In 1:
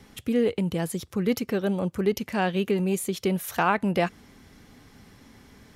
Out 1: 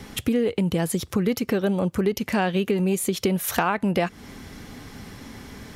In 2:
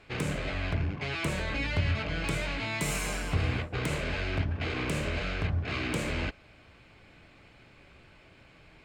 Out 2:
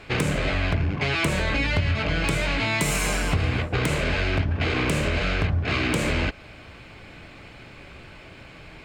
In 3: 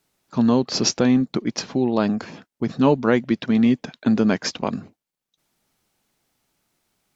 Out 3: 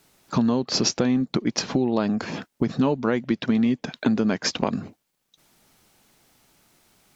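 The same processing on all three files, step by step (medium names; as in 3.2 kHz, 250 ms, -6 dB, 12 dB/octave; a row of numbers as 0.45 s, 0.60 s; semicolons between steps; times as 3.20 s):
compression 4:1, threshold -32 dBFS; normalise loudness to -24 LUFS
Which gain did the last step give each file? +11.0 dB, +11.5 dB, +10.5 dB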